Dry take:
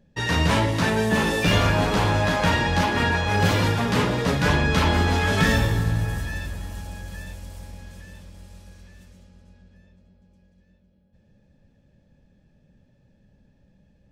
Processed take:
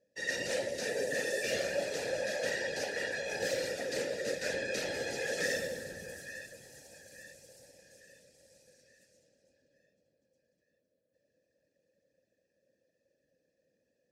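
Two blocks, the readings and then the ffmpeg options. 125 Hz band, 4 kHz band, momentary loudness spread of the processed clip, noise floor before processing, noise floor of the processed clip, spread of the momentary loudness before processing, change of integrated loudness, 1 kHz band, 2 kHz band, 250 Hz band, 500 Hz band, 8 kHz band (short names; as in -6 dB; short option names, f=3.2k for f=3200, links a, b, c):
-31.0 dB, -12.5 dB, 18 LU, -61 dBFS, -81 dBFS, 17 LU, -13.5 dB, -23.0 dB, -11.5 dB, -22.0 dB, -7.5 dB, -5.5 dB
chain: -filter_complex "[0:a]afftfilt=real='hypot(re,im)*cos(2*PI*random(0))':imag='hypot(re,im)*sin(2*PI*random(1))':win_size=512:overlap=0.75,asplit=3[a][b][c];[a]bandpass=f=530:t=q:w=8,volume=0dB[d];[b]bandpass=f=1.84k:t=q:w=8,volume=-6dB[e];[c]bandpass=f=2.48k:t=q:w=8,volume=-9dB[f];[d][e][f]amix=inputs=3:normalize=0,aexciter=amount=10.2:drive=8:freq=4.6k,volume=4.5dB"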